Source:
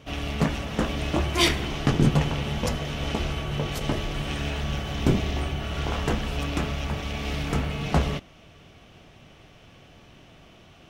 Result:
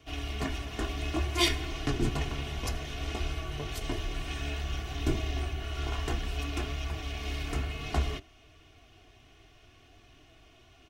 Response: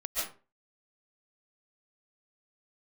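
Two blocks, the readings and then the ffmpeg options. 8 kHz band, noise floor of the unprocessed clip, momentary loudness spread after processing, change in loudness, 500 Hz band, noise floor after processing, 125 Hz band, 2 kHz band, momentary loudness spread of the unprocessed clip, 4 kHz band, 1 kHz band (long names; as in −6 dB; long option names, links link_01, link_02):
−4.5 dB, −52 dBFS, 5 LU, −6.5 dB, −8.0 dB, −59 dBFS, −7.5 dB, −6.0 dB, 8 LU, −5.0 dB, −7.5 dB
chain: -filter_complex "[0:a]aecho=1:1:2.8:0.77,acrossover=split=130|1700|2500[link_01][link_02][link_03][link_04];[link_02]flanger=delay=6.1:depth=9:regen=56:speed=0.58:shape=sinusoidal[link_05];[link_01][link_05][link_03][link_04]amix=inputs=4:normalize=0,volume=-6.5dB"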